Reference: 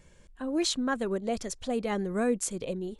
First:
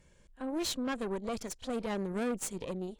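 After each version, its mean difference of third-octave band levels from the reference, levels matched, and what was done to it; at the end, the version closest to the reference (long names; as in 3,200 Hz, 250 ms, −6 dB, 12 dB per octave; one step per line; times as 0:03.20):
4.0 dB: tube saturation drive 29 dB, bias 0.8
echo ahead of the sound 33 ms −20.5 dB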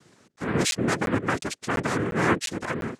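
11.0 dB: cochlear-implant simulation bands 3
regular buffer underruns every 0.35 s, samples 512, zero, from 0:00.36
level +4.5 dB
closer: first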